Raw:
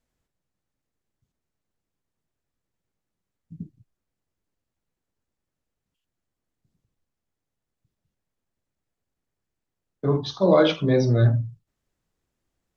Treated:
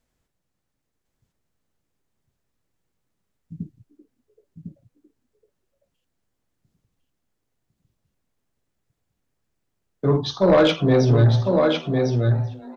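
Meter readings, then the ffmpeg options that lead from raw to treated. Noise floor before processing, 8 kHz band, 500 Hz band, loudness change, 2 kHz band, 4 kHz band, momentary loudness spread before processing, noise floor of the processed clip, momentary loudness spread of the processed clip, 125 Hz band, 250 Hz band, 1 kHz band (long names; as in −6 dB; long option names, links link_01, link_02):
−85 dBFS, can't be measured, +3.5 dB, +2.0 dB, +4.5 dB, +4.5 dB, 10 LU, −78 dBFS, 22 LU, +4.5 dB, +4.0 dB, +4.5 dB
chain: -filter_complex "[0:a]asplit=2[link_01][link_02];[link_02]aecho=0:1:1053:0.562[link_03];[link_01][link_03]amix=inputs=2:normalize=0,aeval=exprs='0.562*(cos(1*acos(clip(val(0)/0.562,-1,1)))-cos(1*PI/2))+0.0708*(cos(5*acos(clip(val(0)/0.562,-1,1)))-cos(5*PI/2))':channel_layout=same,asplit=2[link_04][link_05];[link_05]asplit=3[link_06][link_07][link_08];[link_06]adelay=386,afreqshift=130,volume=-21dB[link_09];[link_07]adelay=772,afreqshift=260,volume=-27.4dB[link_10];[link_08]adelay=1158,afreqshift=390,volume=-33.8dB[link_11];[link_09][link_10][link_11]amix=inputs=3:normalize=0[link_12];[link_04][link_12]amix=inputs=2:normalize=0"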